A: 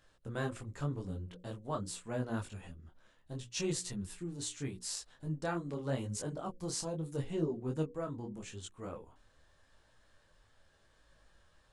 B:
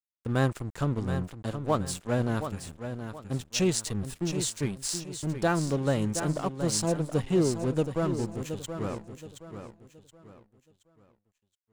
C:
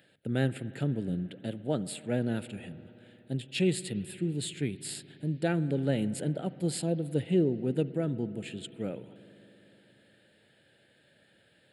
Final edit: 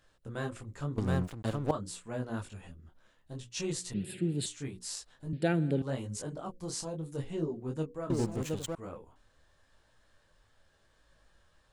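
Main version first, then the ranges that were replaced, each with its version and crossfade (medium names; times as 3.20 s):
A
0.98–1.71 s: from B
3.94–4.46 s: from C
5.33–5.82 s: from C
8.10–8.75 s: from B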